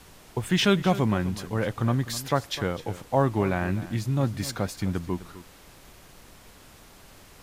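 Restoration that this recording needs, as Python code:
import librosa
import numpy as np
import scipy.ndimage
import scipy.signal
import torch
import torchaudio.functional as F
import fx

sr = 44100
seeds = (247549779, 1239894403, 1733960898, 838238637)

y = fx.noise_reduce(x, sr, print_start_s=6.53, print_end_s=7.03, reduce_db=21.0)
y = fx.fix_echo_inverse(y, sr, delay_ms=254, level_db=-15.5)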